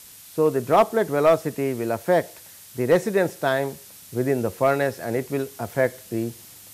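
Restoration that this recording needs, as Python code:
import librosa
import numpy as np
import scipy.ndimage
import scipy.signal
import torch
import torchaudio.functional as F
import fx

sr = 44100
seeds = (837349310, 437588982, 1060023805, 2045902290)

y = fx.fix_declip(x, sr, threshold_db=-9.0)
y = fx.noise_reduce(y, sr, print_start_s=2.26, print_end_s=2.76, reduce_db=21.0)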